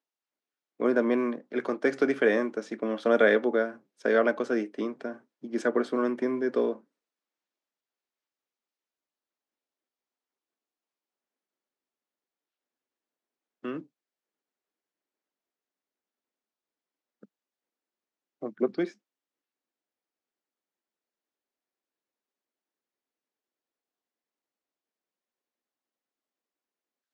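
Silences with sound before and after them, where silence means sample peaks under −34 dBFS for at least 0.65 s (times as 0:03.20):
0:06.73–0:13.65
0:13.79–0:18.43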